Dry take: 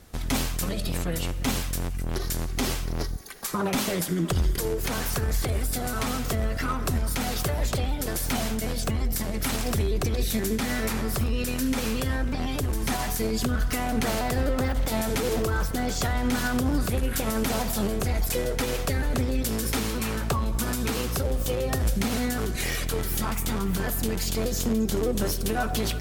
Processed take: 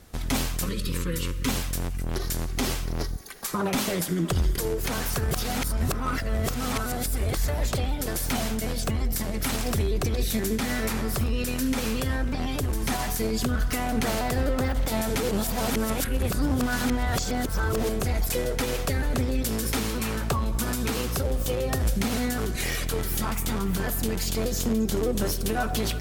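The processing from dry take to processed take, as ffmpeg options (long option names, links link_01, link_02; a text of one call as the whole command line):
ffmpeg -i in.wav -filter_complex "[0:a]asettb=1/sr,asplit=3[link_01][link_02][link_03];[link_01]atrim=end=0.664[link_04];[link_02]atrim=start=0.66:end=1.49,asetpts=PTS-STARTPTS,afade=type=in:duration=0.004:curve=qsin,afade=type=out:start_time=0.826:duration=0.004:curve=qsin,asuperstop=centerf=720:order=8:qfactor=1.8[link_05];[link_03]atrim=start=1.486[link_06];[link_04][link_05]acrossfade=duration=0.004:curve1=hsin:curve2=qsin[link_07];[link_07][link_06]acrossfade=duration=0.004:curve1=qsin:curve2=hsin,asplit=5[link_08][link_09][link_10][link_11][link_12];[link_08]atrim=end=5.312[link_13];[link_09]atrim=start=5.308:end=7.482,asetpts=PTS-STARTPTS,areverse[link_14];[link_10]atrim=start=7.478:end=15.312[link_15];[link_11]atrim=start=15.308:end=17.892,asetpts=PTS-STARTPTS,areverse[link_16];[link_12]atrim=start=17.888[link_17];[link_13][link_14]acrossfade=duration=0.004:curve1=hsin:curve2=hsin[link_18];[link_18][link_15]acrossfade=duration=0.004:curve1=hsin:curve2=hsin[link_19];[link_19][link_16]acrossfade=duration=0.004:curve1=hsin:curve2=hsin[link_20];[link_20][link_17]acrossfade=duration=0.004:curve1=hsin:curve2=hsin" out.wav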